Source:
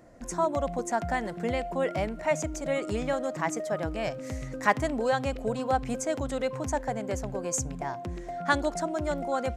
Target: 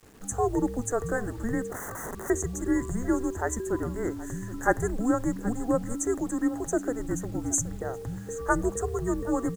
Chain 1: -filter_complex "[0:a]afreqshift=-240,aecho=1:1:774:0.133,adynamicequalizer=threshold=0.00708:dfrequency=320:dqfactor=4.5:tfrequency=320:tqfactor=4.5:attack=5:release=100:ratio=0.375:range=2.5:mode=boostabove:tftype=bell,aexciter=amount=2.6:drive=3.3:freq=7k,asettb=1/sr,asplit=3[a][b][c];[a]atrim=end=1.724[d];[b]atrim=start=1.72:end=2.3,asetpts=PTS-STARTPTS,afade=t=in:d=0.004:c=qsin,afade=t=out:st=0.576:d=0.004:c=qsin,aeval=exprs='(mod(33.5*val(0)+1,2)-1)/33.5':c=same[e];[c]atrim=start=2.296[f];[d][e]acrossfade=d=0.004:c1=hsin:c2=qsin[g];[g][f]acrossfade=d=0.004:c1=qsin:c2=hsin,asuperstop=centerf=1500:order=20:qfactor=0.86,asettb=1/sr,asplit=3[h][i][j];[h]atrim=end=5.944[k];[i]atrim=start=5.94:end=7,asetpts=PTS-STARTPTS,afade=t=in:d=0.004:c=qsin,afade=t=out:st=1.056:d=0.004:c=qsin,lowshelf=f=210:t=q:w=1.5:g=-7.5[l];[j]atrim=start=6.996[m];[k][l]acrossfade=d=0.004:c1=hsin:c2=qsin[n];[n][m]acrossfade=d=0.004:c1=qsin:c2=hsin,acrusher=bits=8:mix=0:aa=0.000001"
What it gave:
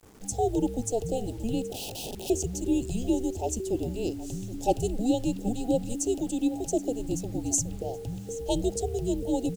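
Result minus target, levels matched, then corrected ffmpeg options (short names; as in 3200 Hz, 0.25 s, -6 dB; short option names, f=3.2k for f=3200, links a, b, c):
2000 Hz band -16.5 dB
-filter_complex "[0:a]afreqshift=-240,aecho=1:1:774:0.133,adynamicequalizer=threshold=0.00708:dfrequency=320:dqfactor=4.5:tfrequency=320:tqfactor=4.5:attack=5:release=100:ratio=0.375:range=2.5:mode=boostabove:tftype=bell,aexciter=amount=2.6:drive=3.3:freq=7k,asettb=1/sr,asplit=3[a][b][c];[a]atrim=end=1.724[d];[b]atrim=start=1.72:end=2.3,asetpts=PTS-STARTPTS,afade=t=in:d=0.004:c=qsin,afade=t=out:st=0.576:d=0.004:c=qsin,aeval=exprs='(mod(33.5*val(0)+1,2)-1)/33.5':c=same[e];[c]atrim=start=2.296[f];[d][e]acrossfade=d=0.004:c1=hsin:c2=qsin[g];[g][f]acrossfade=d=0.004:c1=qsin:c2=hsin,asuperstop=centerf=3500:order=20:qfactor=0.86,asettb=1/sr,asplit=3[h][i][j];[h]atrim=end=5.944[k];[i]atrim=start=5.94:end=7,asetpts=PTS-STARTPTS,afade=t=in:d=0.004:c=qsin,afade=t=out:st=1.056:d=0.004:c=qsin,lowshelf=f=210:t=q:w=1.5:g=-7.5[l];[j]atrim=start=6.996[m];[k][l]acrossfade=d=0.004:c1=hsin:c2=qsin[n];[n][m]acrossfade=d=0.004:c1=qsin:c2=hsin,acrusher=bits=8:mix=0:aa=0.000001"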